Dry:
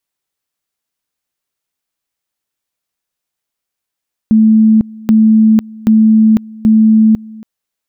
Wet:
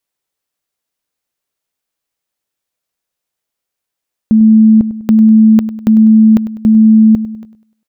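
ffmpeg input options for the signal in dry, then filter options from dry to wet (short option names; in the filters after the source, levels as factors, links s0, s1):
-f lavfi -i "aevalsrc='pow(10,(-4-23.5*gte(mod(t,0.78),0.5))/20)*sin(2*PI*219*t)':d=3.12:s=44100"
-filter_complex "[0:a]equalizer=f=520:w=1.5:g=3.5,asplit=2[s0][s1];[s1]aecho=0:1:100|200|300|400:0.188|0.0791|0.0332|0.014[s2];[s0][s2]amix=inputs=2:normalize=0"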